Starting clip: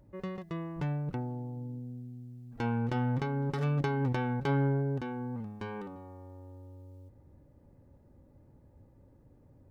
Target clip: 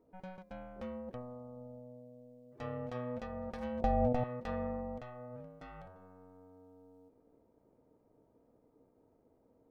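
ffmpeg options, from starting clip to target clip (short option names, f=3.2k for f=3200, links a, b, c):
-filter_complex "[0:a]asettb=1/sr,asplit=3[a][b][c];[a]atrim=end=3.824[d];[b]atrim=start=3.82:end=4.24,asetpts=PTS-STARTPTS,afade=t=in:d=0.004:c=qsin,afade=t=out:st=0.416:d=0.004:c=qsin,lowshelf=f=540:t=q:w=3:g=8.5[e];[c]atrim=start=4.236[f];[d][e]acrossfade=d=0.004:c1=hsin:c2=qsin[g];[g][f]acrossfade=d=0.004:c1=qsin:c2=hsin,aeval=exprs='val(0)*sin(2*PI*370*n/s)':c=same,volume=-7dB"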